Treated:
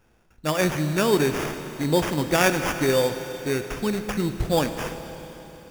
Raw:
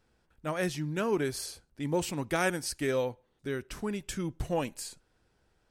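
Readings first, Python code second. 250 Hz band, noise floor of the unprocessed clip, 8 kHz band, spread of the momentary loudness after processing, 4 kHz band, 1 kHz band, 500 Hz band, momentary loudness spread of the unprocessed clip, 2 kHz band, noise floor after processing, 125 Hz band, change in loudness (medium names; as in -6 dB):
+9.0 dB, -73 dBFS, +7.0 dB, 13 LU, +10.5 dB, +9.5 dB, +9.0 dB, 10 LU, +9.0 dB, -60 dBFS, +9.5 dB, +9.0 dB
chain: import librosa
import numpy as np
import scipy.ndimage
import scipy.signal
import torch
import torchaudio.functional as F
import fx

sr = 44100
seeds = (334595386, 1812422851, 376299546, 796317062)

y = fx.sample_hold(x, sr, seeds[0], rate_hz=4100.0, jitter_pct=0)
y = fx.rev_schroeder(y, sr, rt60_s=3.9, comb_ms=26, drr_db=8.0)
y = y * librosa.db_to_amplitude(8.5)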